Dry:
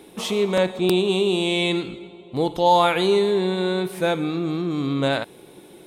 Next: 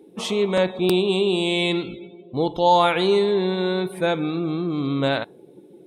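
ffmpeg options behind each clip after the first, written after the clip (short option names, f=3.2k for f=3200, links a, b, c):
-af "afftdn=nr=18:nf=-43"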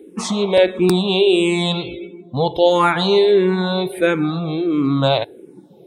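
-filter_complex "[0:a]asplit=2[a][b];[b]afreqshift=-1.5[c];[a][c]amix=inputs=2:normalize=1,volume=8dB"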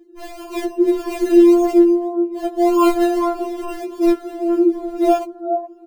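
-filter_complex "[0:a]acrossover=split=910[a][b];[a]aecho=1:1:422|844|1266|1688:0.708|0.198|0.0555|0.0155[c];[b]acrusher=samples=31:mix=1:aa=0.000001:lfo=1:lforange=18.6:lforate=1.7[d];[c][d]amix=inputs=2:normalize=0,afftfilt=real='re*4*eq(mod(b,16),0)':imag='im*4*eq(mod(b,16),0)':win_size=2048:overlap=0.75,volume=-1dB"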